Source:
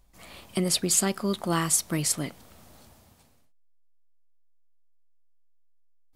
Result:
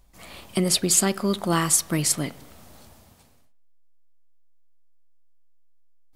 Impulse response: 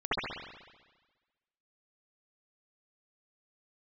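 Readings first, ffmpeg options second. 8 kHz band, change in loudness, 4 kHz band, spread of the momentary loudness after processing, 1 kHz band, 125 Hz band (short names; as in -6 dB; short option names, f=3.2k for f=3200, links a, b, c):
+3.5 dB, +3.5 dB, +3.5 dB, 8 LU, +4.0 dB, +3.5 dB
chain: -filter_complex "[0:a]asplit=2[a][b];[1:a]atrim=start_sample=2205,afade=t=out:st=0.32:d=0.01,atrim=end_sample=14553[c];[b][c]afir=irnorm=-1:irlink=0,volume=-30.5dB[d];[a][d]amix=inputs=2:normalize=0,volume=3.5dB"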